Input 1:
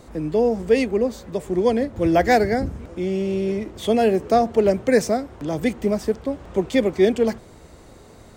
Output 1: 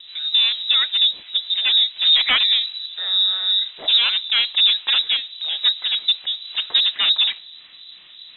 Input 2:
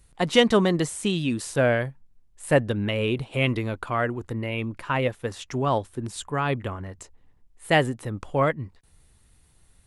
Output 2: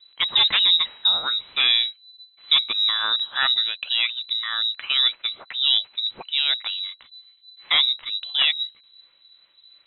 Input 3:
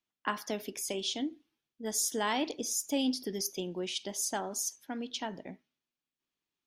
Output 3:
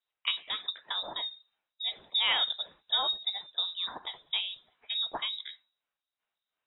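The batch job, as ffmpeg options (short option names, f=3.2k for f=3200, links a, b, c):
-filter_complex "[0:a]bandreject=f=75.41:t=h:w=4,bandreject=f=150.82:t=h:w=4,aeval=exprs='0.188*(abs(mod(val(0)/0.188+3,4)-2)-1)':c=same,acrossover=split=730[a][b];[a]aeval=exprs='val(0)*(1-0.7/2+0.7/2*cos(2*PI*2.8*n/s))':c=same[c];[b]aeval=exprs='val(0)*(1-0.7/2-0.7/2*cos(2*PI*2.8*n/s))':c=same[d];[c][d]amix=inputs=2:normalize=0,lowpass=f=3.4k:t=q:w=0.5098,lowpass=f=3.4k:t=q:w=0.6013,lowpass=f=3.4k:t=q:w=0.9,lowpass=f=3.4k:t=q:w=2.563,afreqshift=-4000,volume=6.5dB"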